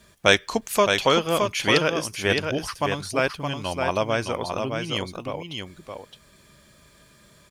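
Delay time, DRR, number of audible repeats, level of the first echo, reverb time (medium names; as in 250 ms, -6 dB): 616 ms, no reverb, 1, -5.5 dB, no reverb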